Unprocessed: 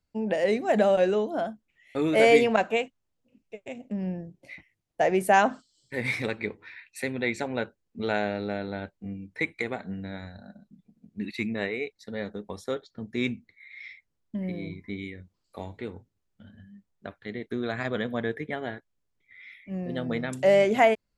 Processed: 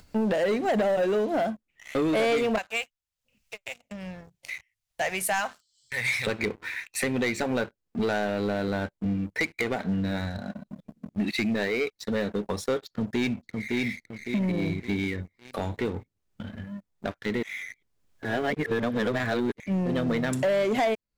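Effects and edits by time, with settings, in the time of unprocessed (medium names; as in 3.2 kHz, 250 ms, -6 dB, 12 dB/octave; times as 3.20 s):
2.58–6.27 s: amplifier tone stack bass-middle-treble 10-0-10
12.87–13.82 s: echo throw 560 ms, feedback 35%, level -6.5 dB
17.43–19.60 s: reverse
whole clip: compression 3:1, threshold -33 dBFS; waveshaping leveller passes 3; upward compressor, threshold -33 dBFS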